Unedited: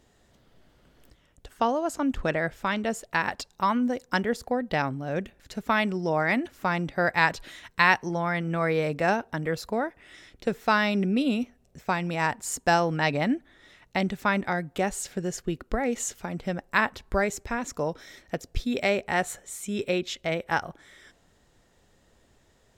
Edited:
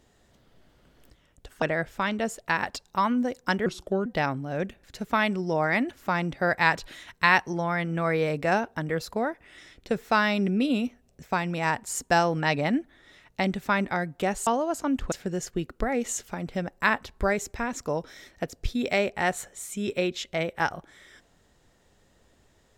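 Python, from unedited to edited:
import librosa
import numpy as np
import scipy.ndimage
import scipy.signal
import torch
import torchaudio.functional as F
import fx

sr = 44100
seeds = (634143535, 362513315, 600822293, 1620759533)

y = fx.edit(x, sr, fx.move(start_s=1.62, length_s=0.65, to_s=15.03),
    fx.speed_span(start_s=4.31, length_s=0.31, speed=0.78), tone=tone)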